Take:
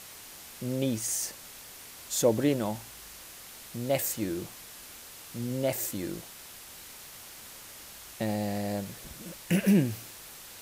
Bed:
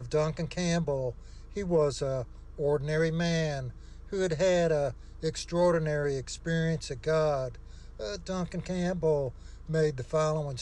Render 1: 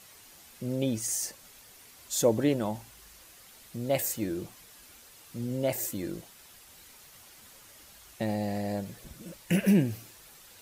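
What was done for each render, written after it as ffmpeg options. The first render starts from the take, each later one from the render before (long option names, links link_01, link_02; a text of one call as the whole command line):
ffmpeg -i in.wav -af "afftdn=noise_reduction=8:noise_floor=-47" out.wav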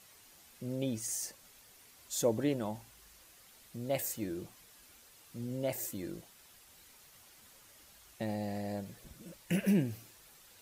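ffmpeg -i in.wav -af "volume=-6dB" out.wav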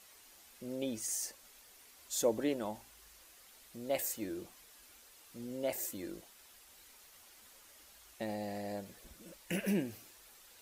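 ffmpeg -i in.wav -af "equalizer=frequency=130:width=1.5:gain=-14" out.wav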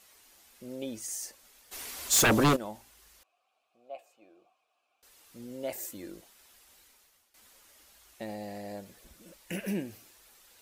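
ffmpeg -i in.wav -filter_complex "[0:a]asplit=3[link_01][link_02][link_03];[link_01]afade=type=out:start_time=1.71:duration=0.02[link_04];[link_02]aeval=exprs='0.119*sin(PI/2*5.01*val(0)/0.119)':channel_layout=same,afade=type=in:start_time=1.71:duration=0.02,afade=type=out:start_time=2.55:duration=0.02[link_05];[link_03]afade=type=in:start_time=2.55:duration=0.02[link_06];[link_04][link_05][link_06]amix=inputs=3:normalize=0,asettb=1/sr,asplit=3[link_07][link_08][link_09];[link_07]atrim=end=3.234[link_10];[link_08]atrim=start=3.23:end=5.03,asetpts=PTS-STARTPTS,afade=type=in:duration=0.004:curve=qsin,afade=type=out:start_time=1.796:duration=0.004:curve=qsin,asplit=3[link_11][link_12][link_13];[link_11]bandpass=frequency=730:width_type=q:width=8,volume=0dB[link_14];[link_12]bandpass=frequency=1090:width_type=q:width=8,volume=-6dB[link_15];[link_13]bandpass=frequency=2440:width_type=q:width=8,volume=-9dB[link_16];[link_14][link_15][link_16]amix=inputs=3:normalize=0[link_17];[link_09]atrim=start=5.026[link_18];[link_10][link_17]acrossfade=duration=0.004:curve1=hsin:curve2=qsin[link_19];[link_19][link_18]acrossfade=duration=0.004:curve1=qsin:curve2=hsin,asplit=2[link_20][link_21];[link_20]atrim=end=7.34,asetpts=PTS-STARTPTS,afade=type=out:start_time=6.73:duration=0.61:silence=0.149624[link_22];[link_21]atrim=start=7.34,asetpts=PTS-STARTPTS,afade=type=in:duration=0.004:curve=hsin:silence=0.149624[link_23];[link_22][link_23]concat=n=2:v=0:a=1" out.wav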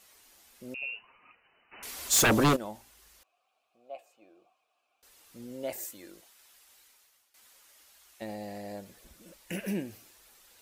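ffmpeg -i in.wav -filter_complex "[0:a]asettb=1/sr,asplit=3[link_01][link_02][link_03];[link_01]atrim=end=0.744[link_04];[link_02]atrim=start=0.74:end=1.83,asetpts=PTS-STARTPTS,afade=type=in:duration=0.004:curve=qsin,afade=type=out:start_time=1.086:duration=0.004:curve=qsin,lowpass=frequency=2600:width_type=q:width=0.5098,lowpass=frequency=2600:width_type=q:width=0.6013,lowpass=frequency=2600:width_type=q:width=0.9,lowpass=frequency=2600:width_type=q:width=2.563,afreqshift=-3000[link_05];[link_03]atrim=start=1.826[link_06];[link_04][link_05]acrossfade=duration=0.004:curve1=hsin:curve2=qsin[link_07];[link_07][link_06]acrossfade=duration=0.004:curve1=qsin:curve2=hsin,asettb=1/sr,asplit=3[link_08][link_09][link_10];[link_08]atrim=end=5.844[link_11];[link_09]atrim=start=5.84:end=8.22,asetpts=PTS-STARTPTS,afade=type=in:duration=0.004:curve=qsin,afade=type=out:start_time=2.376:duration=0.004:curve=qsin,lowshelf=frequency=450:gain=-10.5[link_12];[link_10]atrim=start=8.216[link_13];[link_11][link_12]acrossfade=duration=0.004:curve1=hsin:curve2=qsin[link_14];[link_14][link_13]acrossfade=duration=0.004:curve1=qsin:curve2=hsin" out.wav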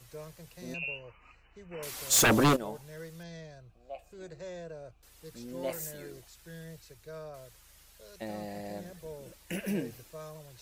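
ffmpeg -i in.wav -i bed.wav -filter_complex "[1:a]volume=-17.5dB[link_01];[0:a][link_01]amix=inputs=2:normalize=0" out.wav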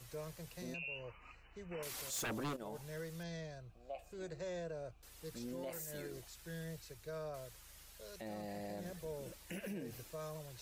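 ffmpeg -i in.wav -af "acompressor=threshold=-35dB:ratio=6,alimiter=level_in=12dB:limit=-24dB:level=0:latency=1:release=69,volume=-12dB" out.wav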